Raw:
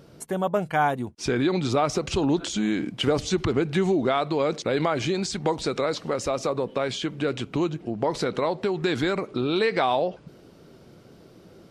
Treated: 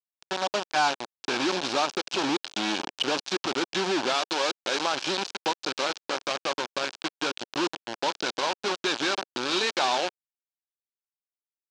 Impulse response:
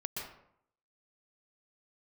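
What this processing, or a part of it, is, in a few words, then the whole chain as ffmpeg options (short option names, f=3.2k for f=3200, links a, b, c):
hand-held game console: -filter_complex "[0:a]acrusher=bits=3:mix=0:aa=0.000001,highpass=420,equalizer=f=460:t=q:w=4:g=-9,equalizer=f=660:t=q:w=4:g=-6,equalizer=f=1.2k:t=q:w=4:g=-5,equalizer=f=2k:t=q:w=4:g=-9,lowpass=f=5.8k:w=0.5412,lowpass=f=5.8k:w=1.3066,asettb=1/sr,asplit=3[a][b][c];[a]atrim=end=4.144[d];[b]atrim=start=4.14:end=4.86,asetpts=PTS-STARTPTS,afade=t=in:d=0.004:c=qsin,afade=t=out:st=0.716:d=0.004:c=qsin,bass=f=250:g=-7,treble=f=4k:g=2[e];[c]atrim=start=4.856[f];[d][e]acrossfade=d=0.004:c1=hsin:c2=qsin[g];[g][f]acrossfade=d=0.004:c1=qsin:c2=hsin,volume=1.5dB"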